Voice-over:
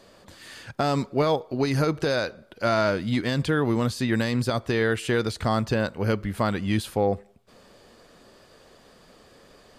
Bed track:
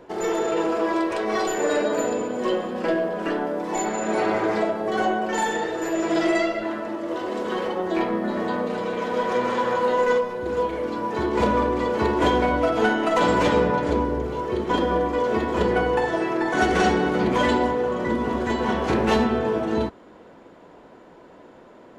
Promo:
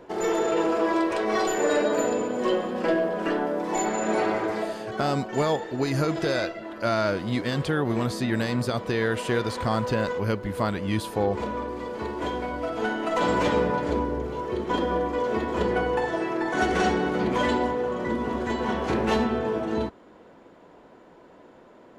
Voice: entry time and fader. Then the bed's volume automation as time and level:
4.20 s, -2.0 dB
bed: 4.11 s -0.5 dB
4.96 s -10 dB
12.49 s -10 dB
13.32 s -3.5 dB

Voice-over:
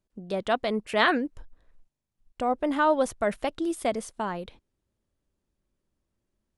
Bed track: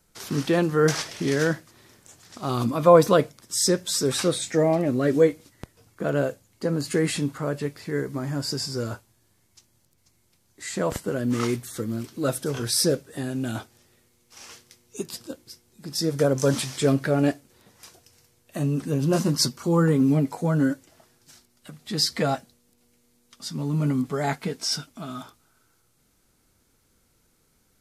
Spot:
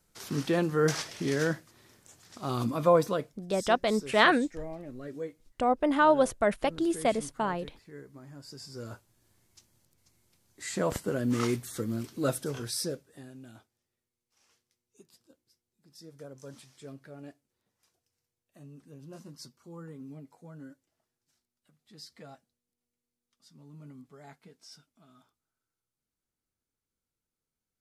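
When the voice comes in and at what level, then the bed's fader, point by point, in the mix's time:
3.20 s, +0.5 dB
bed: 2.81 s -5.5 dB
3.54 s -19.5 dB
8.44 s -19.5 dB
9.27 s -3.5 dB
12.28 s -3.5 dB
13.75 s -25 dB

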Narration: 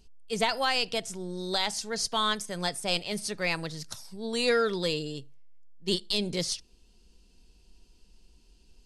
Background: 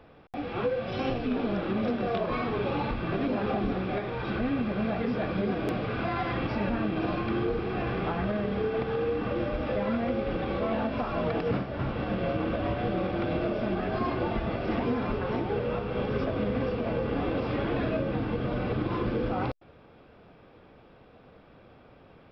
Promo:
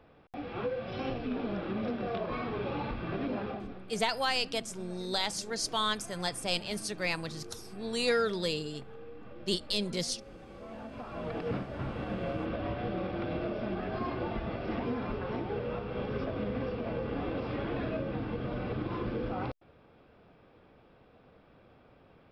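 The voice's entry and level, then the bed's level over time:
3.60 s, -3.0 dB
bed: 3.38 s -5.5 dB
3.87 s -19.5 dB
10.48 s -19.5 dB
11.50 s -5.5 dB

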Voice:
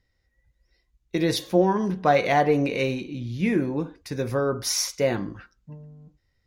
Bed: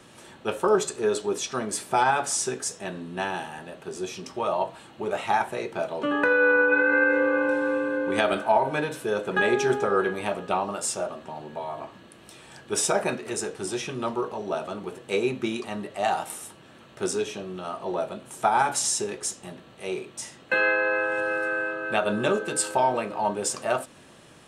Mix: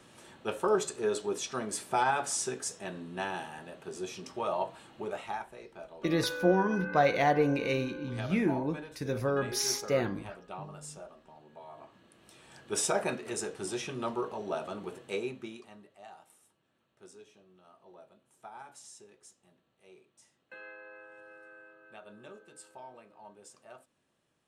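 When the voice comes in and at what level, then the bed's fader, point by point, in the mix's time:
4.90 s, -5.5 dB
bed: 4.99 s -6 dB
5.51 s -17.5 dB
11.42 s -17.5 dB
12.76 s -5.5 dB
14.97 s -5.5 dB
16.07 s -26 dB

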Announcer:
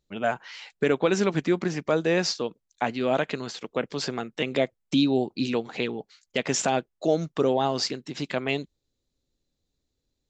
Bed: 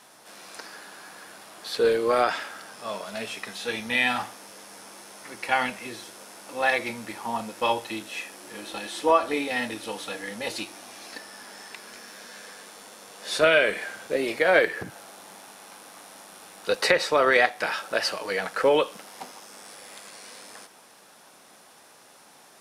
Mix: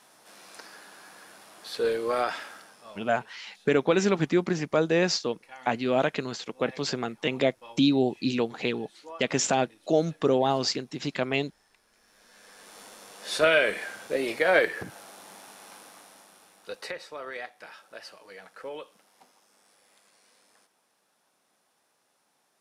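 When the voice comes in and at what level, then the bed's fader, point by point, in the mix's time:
2.85 s, 0.0 dB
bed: 2.53 s -5 dB
3.26 s -23 dB
11.89 s -23 dB
12.79 s -2 dB
15.77 s -2 dB
17.11 s -18.5 dB

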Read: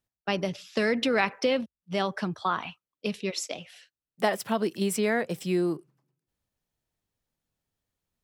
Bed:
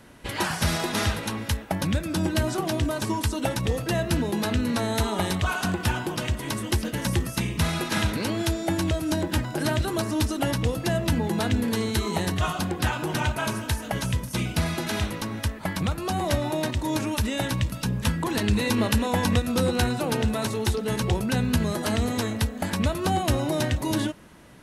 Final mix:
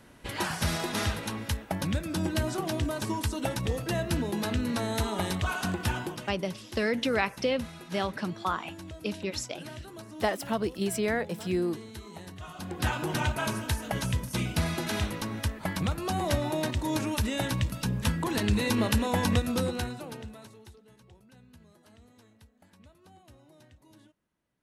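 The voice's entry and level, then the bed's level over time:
6.00 s, -2.5 dB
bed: 6.05 s -4.5 dB
6.36 s -18 dB
12.45 s -18 dB
12.87 s -3 dB
19.49 s -3 dB
20.96 s -32 dB

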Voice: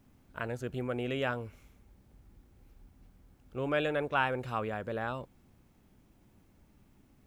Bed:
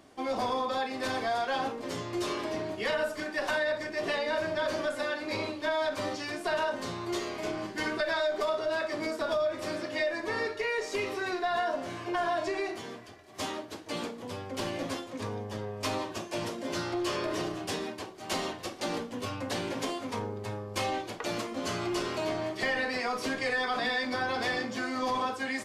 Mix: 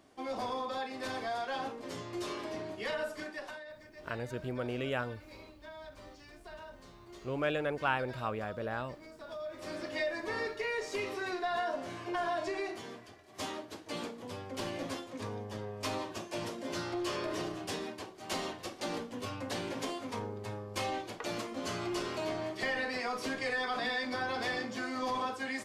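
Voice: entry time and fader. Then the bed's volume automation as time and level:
3.70 s, -2.0 dB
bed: 3.26 s -6 dB
3.63 s -19 dB
9.11 s -19 dB
9.85 s -4 dB

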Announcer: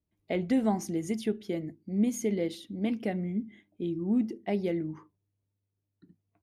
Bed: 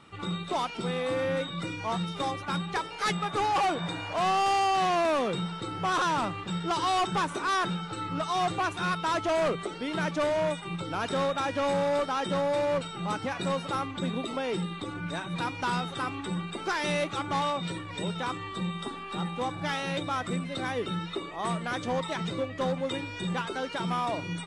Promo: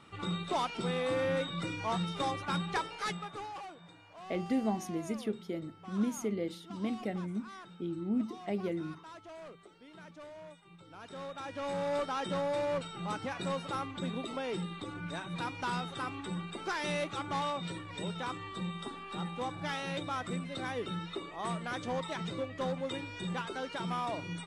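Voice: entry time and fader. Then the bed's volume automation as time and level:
4.00 s, -5.0 dB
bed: 2.83 s -2.5 dB
3.76 s -22 dB
10.73 s -22 dB
11.96 s -5.5 dB

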